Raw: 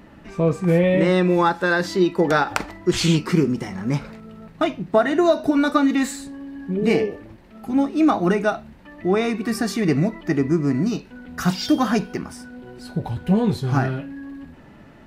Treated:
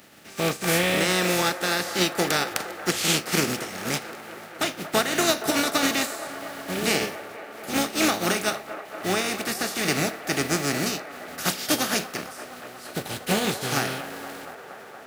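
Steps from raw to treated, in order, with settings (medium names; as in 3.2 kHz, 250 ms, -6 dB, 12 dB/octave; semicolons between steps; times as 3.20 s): spectral contrast reduction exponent 0.4; high-pass 120 Hz 12 dB/octave; band-stop 1 kHz, Q 5.9; on a send: feedback echo behind a band-pass 234 ms, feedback 83%, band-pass 900 Hz, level -11.5 dB; on the sum: trim -5 dB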